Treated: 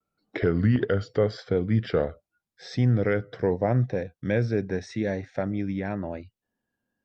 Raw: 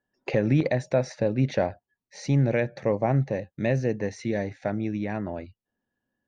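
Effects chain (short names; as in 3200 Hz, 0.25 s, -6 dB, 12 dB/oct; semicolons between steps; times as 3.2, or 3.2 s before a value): speed glide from 78% -> 100%; vibrato 0.83 Hz 50 cents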